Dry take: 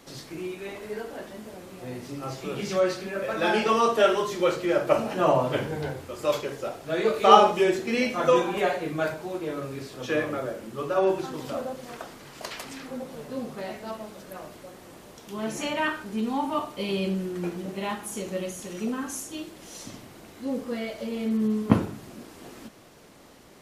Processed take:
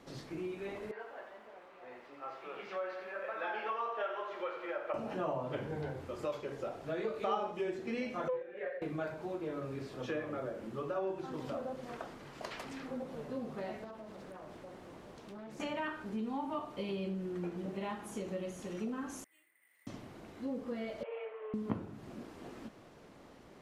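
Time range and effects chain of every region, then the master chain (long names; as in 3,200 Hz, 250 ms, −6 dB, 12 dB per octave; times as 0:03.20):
0:00.91–0:04.94: band-pass filter 760–2,400 Hz + feedback echo at a low word length 88 ms, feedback 55%, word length 9 bits, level −9 dB
0:08.28–0:08.82: pair of resonant band-passes 960 Hz, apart 1.8 octaves + highs frequency-modulated by the lows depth 0.13 ms
0:13.84–0:15.60: downward compressor 8 to 1, threshold −40 dBFS + highs frequency-modulated by the lows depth 0.38 ms
0:19.24–0:19.87: resonant band-pass 2,000 Hz, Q 17 + bad sample-rate conversion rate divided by 4×, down filtered, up zero stuff
0:21.03–0:21.54: elliptic band-pass filter 500–2,700 Hz + comb filter 6.6 ms, depth 35%
whole clip: high-shelf EQ 3,100 Hz −9.5 dB; downward compressor 3 to 1, threshold −33 dBFS; high-shelf EQ 11,000 Hz −8.5 dB; level −3.5 dB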